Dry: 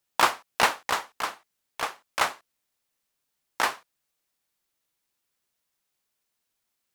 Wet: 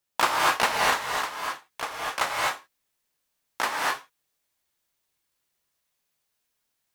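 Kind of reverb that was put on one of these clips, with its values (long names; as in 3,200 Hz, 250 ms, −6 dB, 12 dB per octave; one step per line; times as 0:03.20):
reverb whose tail is shaped and stops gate 280 ms rising, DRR −3 dB
level −2.5 dB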